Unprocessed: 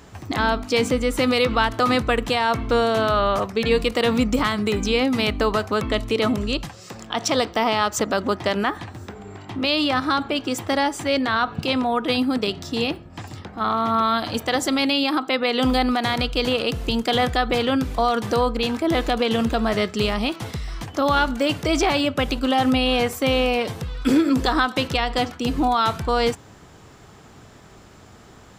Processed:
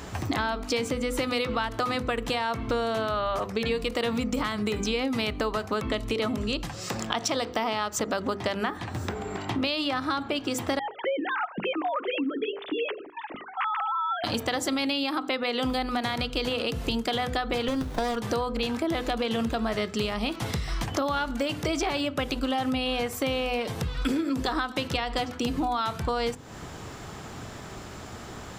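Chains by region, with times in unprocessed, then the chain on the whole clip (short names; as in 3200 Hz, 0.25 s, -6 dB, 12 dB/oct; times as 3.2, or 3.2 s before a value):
10.79–14.24 sine-wave speech + compressor 1.5:1, threshold -39 dBFS
17.68–18.16 short-mantissa float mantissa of 6-bit + resonant high shelf 3000 Hz +7 dB, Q 1.5 + running maximum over 17 samples
whole clip: notches 50/100/150/200/250/300/350/400/450/500 Hz; compressor, threshold -33 dBFS; gain +7 dB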